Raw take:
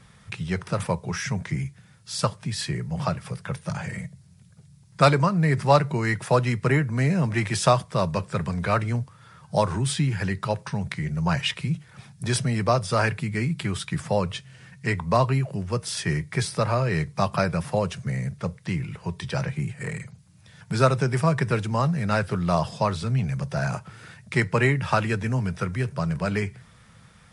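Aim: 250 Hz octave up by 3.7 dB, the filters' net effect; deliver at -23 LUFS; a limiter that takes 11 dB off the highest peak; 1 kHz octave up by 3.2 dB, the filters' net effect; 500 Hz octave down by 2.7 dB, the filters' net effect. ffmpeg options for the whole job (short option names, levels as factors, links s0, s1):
-af "equalizer=f=250:t=o:g=7,equalizer=f=500:t=o:g=-7,equalizer=f=1000:t=o:g=5.5,volume=1.41,alimiter=limit=0.282:level=0:latency=1"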